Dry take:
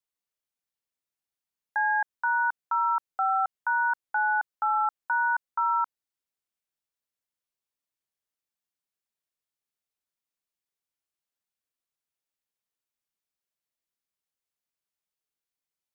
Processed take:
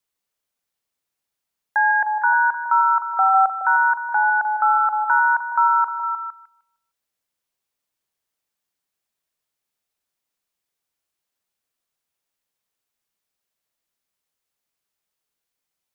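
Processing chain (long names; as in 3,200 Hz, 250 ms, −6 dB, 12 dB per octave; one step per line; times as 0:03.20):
echo through a band-pass that steps 153 ms, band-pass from 600 Hz, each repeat 0.7 octaves, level −5 dB
level +8 dB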